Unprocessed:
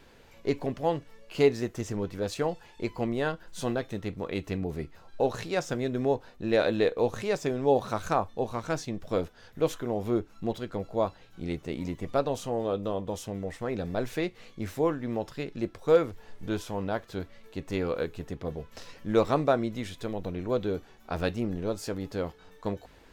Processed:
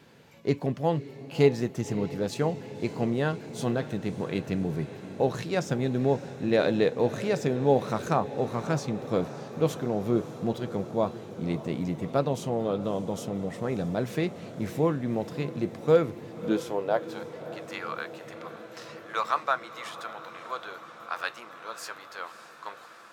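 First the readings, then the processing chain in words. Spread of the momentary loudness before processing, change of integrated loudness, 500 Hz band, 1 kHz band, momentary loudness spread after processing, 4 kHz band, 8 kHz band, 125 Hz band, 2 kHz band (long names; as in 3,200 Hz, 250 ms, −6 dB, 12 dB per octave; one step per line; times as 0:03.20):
11 LU, +1.5 dB, +0.5 dB, +1.5 dB, 15 LU, +0.5 dB, +0.5 dB, +4.0 dB, +2.0 dB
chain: high-pass filter sweep 140 Hz → 1,200 Hz, 0:16.23–0:17.35
feedback delay with all-pass diffusion 587 ms, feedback 74%, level −14.5 dB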